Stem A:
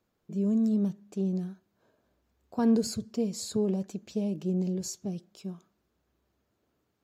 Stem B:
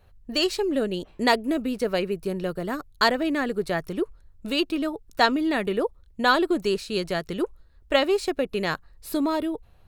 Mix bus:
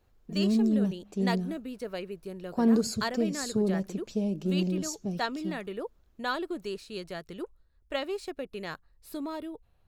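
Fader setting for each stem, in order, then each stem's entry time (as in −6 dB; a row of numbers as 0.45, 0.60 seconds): +1.0, −11.5 decibels; 0.00, 0.00 seconds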